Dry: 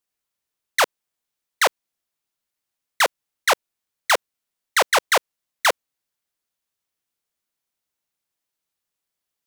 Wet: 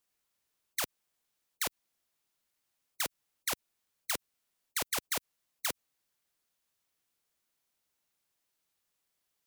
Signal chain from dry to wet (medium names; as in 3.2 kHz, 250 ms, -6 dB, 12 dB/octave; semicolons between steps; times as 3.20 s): level held to a coarse grid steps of 20 dB; spectrum-flattening compressor 4:1; trim -1.5 dB